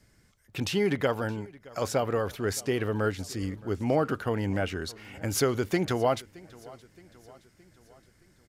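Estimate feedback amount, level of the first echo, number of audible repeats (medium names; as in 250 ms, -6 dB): 53%, -22.0 dB, 3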